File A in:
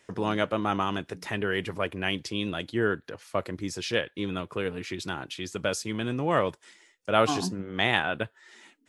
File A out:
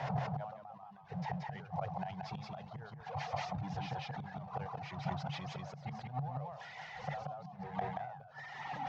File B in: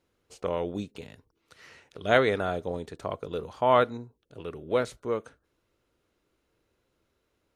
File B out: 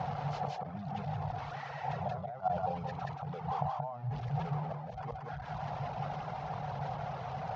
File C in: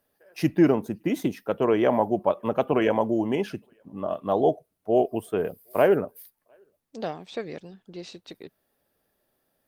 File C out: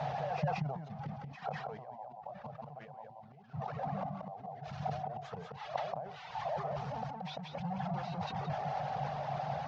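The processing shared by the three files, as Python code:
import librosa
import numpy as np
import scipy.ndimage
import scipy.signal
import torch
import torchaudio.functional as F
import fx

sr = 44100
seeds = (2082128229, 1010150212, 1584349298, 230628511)

p1 = fx.delta_mod(x, sr, bps=32000, step_db=-27.5)
p2 = fx.dereverb_blind(p1, sr, rt60_s=1.6)
p3 = fx.peak_eq(p2, sr, hz=230.0, db=-3.5, octaves=0.22)
p4 = fx.gate_flip(p3, sr, shuts_db=-22.0, range_db=-27)
p5 = np.clip(10.0 ** (30.5 / 20.0) * p4, -1.0, 1.0) / 10.0 ** (30.5 / 20.0)
p6 = p4 + (p5 * librosa.db_to_amplitude(-11.5))
p7 = fx.double_bandpass(p6, sr, hz=330.0, octaves=2.4)
p8 = p7 + 10.0 ** (-3.5 / 20.0) * np.pad(p7, (int(179 * sr / 1000.0), 0))[:len(p7)]
p9 = fx.sustainer(p8, sr, db_per_s=60.0)
y = p9 * librosa.db_to_amplitude(8.5)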